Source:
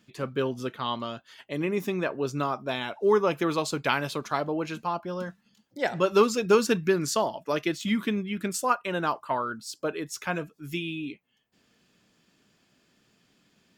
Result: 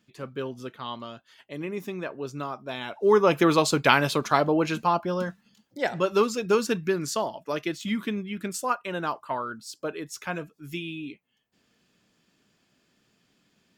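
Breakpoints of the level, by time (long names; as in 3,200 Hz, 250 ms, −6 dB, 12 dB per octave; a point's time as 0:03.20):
0:02.66 −5 dB
0:03.38 +6.5 dB
0:04.97 +6.5 dB
0:06.22 −2 dB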